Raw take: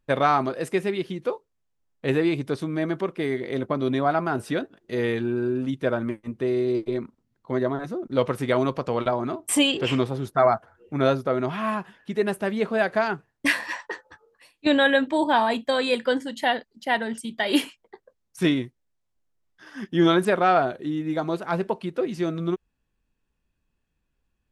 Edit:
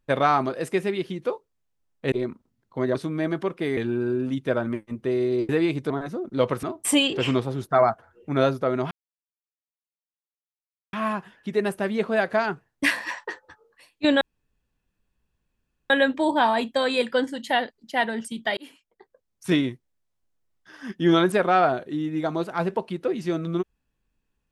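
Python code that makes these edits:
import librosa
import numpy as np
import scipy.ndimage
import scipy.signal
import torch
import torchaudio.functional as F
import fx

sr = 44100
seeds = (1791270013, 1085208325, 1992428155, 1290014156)

y = fx.edit(x, sr, fx.swap(start_s=2.12, length_s=0.41, other_s=6.85, other_length_s=0.83),
    fx.cut(start_s=3.35, length_s=1.78),
    fx.cut(start_s=8.41, length_s=0.86),
    fx.insert_silence(at_s=11.55, length_s=2.02),
    fx.insert_room_tone(at_s=14.83, length_s=1.69),
    fx.fade_in_span(start_s=17.5, length_s=0.95), tone=tone)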